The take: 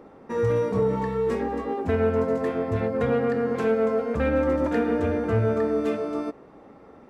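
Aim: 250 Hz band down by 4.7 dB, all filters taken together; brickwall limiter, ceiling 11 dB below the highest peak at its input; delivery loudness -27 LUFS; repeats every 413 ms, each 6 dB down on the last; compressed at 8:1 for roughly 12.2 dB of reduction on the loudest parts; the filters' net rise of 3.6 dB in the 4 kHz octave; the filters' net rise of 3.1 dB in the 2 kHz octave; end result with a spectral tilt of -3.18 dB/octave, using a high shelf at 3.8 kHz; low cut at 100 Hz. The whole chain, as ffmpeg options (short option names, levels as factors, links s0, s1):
-af "highpass=100,equalizer=f=250:t=o:g=-5.5,equalizer=f=2000:t=o:g=4,highshelf=f=3800:g=-5.5,equalizer=f=4000:t=o:g=6.5,acompressor=threshold=0.0224:ratio=8,alimiter=level_in=2.99:limit=0.0631:level=0:latency=1,volume=0.335,aecho=1:1:413|826|1239|1652|2065|2478:0.501|0.251|0.125|0.0626|0.0313|0.0157,volume=4.47"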